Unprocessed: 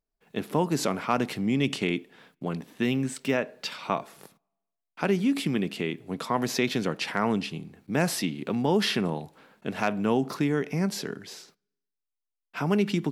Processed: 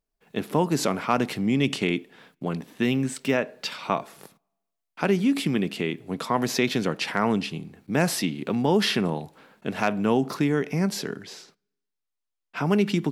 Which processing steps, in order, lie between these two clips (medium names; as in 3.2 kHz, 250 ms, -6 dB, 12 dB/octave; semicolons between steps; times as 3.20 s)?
11.23–12.65 s: treble shelf 11 kHz -11.5 dB; trim +2.5 dB